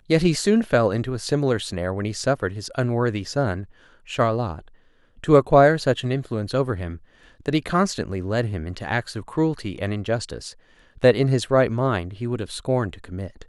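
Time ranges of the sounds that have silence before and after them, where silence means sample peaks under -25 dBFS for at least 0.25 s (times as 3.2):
4.11–4.53
5.24–6.92
7.46–10.48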